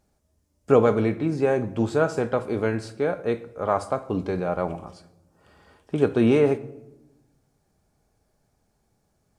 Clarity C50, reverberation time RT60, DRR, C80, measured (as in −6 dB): 17.0 dB, 0.95 s, 11.5 dB, 19.5 dB